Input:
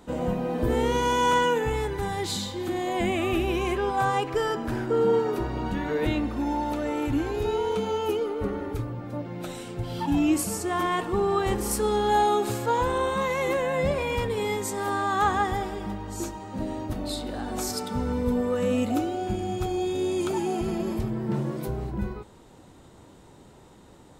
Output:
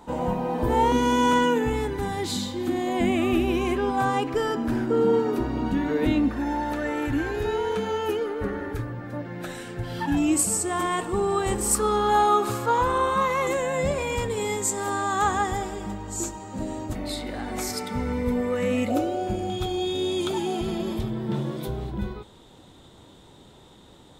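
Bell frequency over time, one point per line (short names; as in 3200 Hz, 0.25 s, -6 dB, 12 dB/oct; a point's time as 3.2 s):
bell +13 dB 0.33 oct
900 Hz
from 0.92 s 260 Hz
from 6.31 s 1700 Hz
from 10.17 s 8000 Hz
from 11.75 s 1200 Hz
from 13.47 s 7400 Hz
from 16.95 s 2100 Hz
from 18.88 s 550 Hz
from 19.5 s 3500 Hz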